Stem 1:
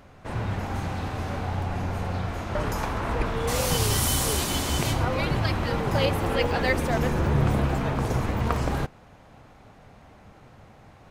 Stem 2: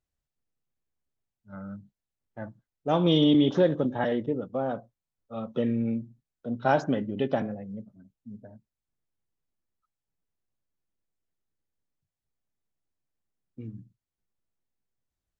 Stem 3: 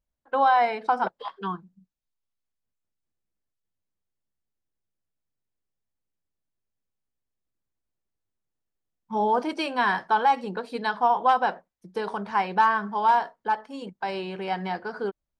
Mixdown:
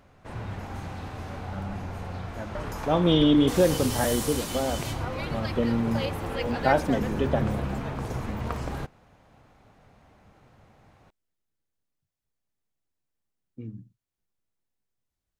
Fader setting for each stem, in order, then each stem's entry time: -6.5 dB, +1.0 dB, mute; 0.00 s, 0.00 s, mute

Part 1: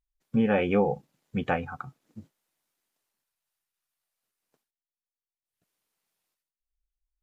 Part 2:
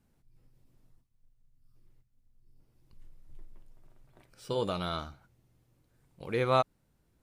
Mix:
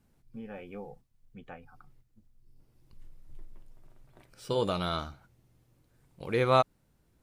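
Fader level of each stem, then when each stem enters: -19.5 dB, +2.5 dB; 0.00 s, 0.00 s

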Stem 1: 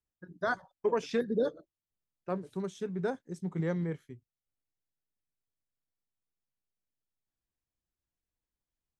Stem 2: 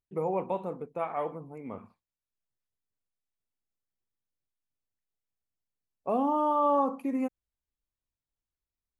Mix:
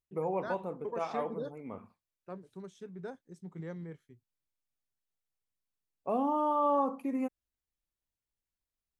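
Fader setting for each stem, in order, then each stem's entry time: -10.0 dB, -3.0 dB; 0.00 s, 0.00 s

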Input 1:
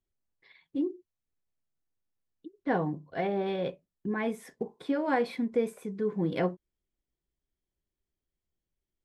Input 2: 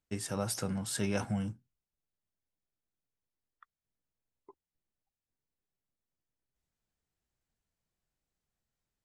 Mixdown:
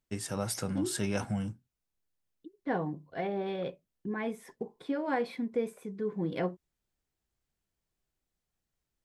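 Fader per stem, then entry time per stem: -3.5 dB, +0.5 dB; 0.00 s, 0.00 s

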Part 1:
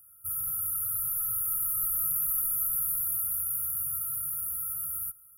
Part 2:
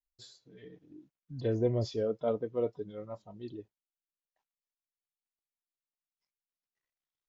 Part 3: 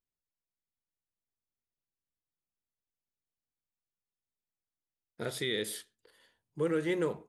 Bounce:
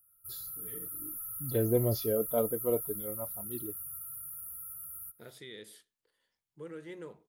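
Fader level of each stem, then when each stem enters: -10.5 dB, +1.5 dB, -14.0 dB; 0.00 s, 0.10 s, 0.00 s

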